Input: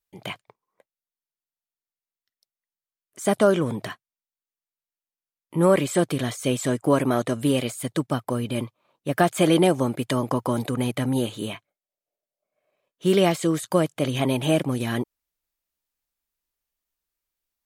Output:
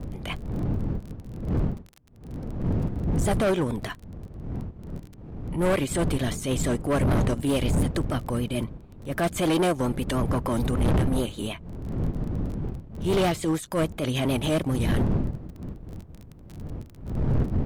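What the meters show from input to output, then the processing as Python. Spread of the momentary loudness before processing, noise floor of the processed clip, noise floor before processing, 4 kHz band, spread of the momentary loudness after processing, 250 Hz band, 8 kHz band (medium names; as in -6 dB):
14 LU, -47 dBFS, under -85 dBFS, -2.5 dB, 16 LU, -1.5 dB, -2.5 dB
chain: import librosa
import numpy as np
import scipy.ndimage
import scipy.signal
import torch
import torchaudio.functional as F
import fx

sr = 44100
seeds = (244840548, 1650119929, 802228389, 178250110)

p1 = fx.dmg_wind(x, sr, seeds[0], corner_hz=160.0, level_db=-24.0)
p2 = 10.0 ** (-21.0 / 20.0) * np.tanh(p1 / 10.0 ** (-21.0 / 20.0))
p3 = p1 + (p2 * librosa.db_to_amplitude(-8.0))
p4 = fx.transient(p3, sr, attack_db=-9, sustain_db=-5)
p5 = fx.dmg_crackle(p4, sr, seeds[1], per_s=25.0, level_db=-33.0)
p6 = np.clip(10.0 ** (17.5 / 20.0) * p5, -1.0, 1.0) / 10.0 ** (17.5 / 20.0)
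p7 = fx.vibrato(p6, sr, rate_hz=6.8, depth_cents=60.0)
y = p7 * librosa.db_to_amplitude(-1.5)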